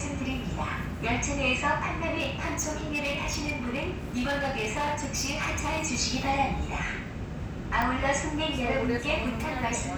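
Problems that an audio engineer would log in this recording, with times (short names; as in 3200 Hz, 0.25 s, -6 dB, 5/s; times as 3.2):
2.19–5.86 clipped -25 dBFS
7.82 pop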